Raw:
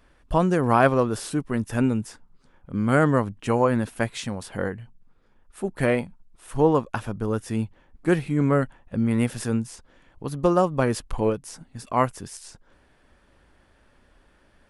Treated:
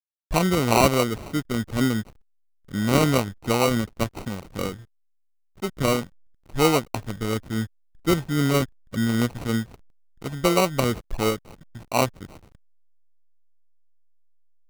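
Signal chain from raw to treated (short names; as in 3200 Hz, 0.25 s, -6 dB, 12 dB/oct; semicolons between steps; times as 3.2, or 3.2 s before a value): sample-and-hold 26×; backlash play -37 dBFS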